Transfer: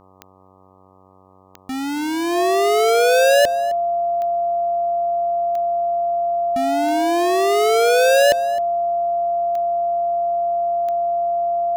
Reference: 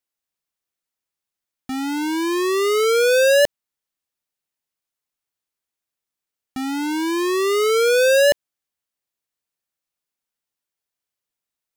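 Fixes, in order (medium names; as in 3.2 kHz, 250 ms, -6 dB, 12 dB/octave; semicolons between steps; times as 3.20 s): de-click; de-hum 94.5 Hz, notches 13; band-stop 690 Hz, Q 30; inverse comb 262 ms -17 dB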